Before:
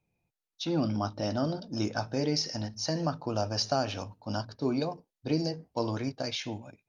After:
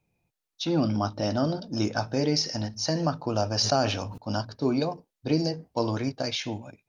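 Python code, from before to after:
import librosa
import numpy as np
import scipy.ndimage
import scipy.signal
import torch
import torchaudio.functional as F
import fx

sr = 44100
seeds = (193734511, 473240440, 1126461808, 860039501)

y = fx.sustainer(x, sr, db_per_s=52.0, at=(3.5, 4.18))
y = y * 10.0 ** (4.0 / 20.0)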